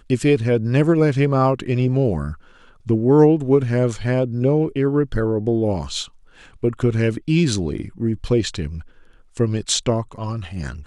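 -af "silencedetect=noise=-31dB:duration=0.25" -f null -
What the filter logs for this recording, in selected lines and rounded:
silence_start: 2.34
silence_end: 2.87 | silence_duration: 0.53
silence_start: 6.06
silence_end: 6.63 | silence_duration: 0.57
silence_start: 8.81
silence_end: 9.37 | silence_duration: 0.56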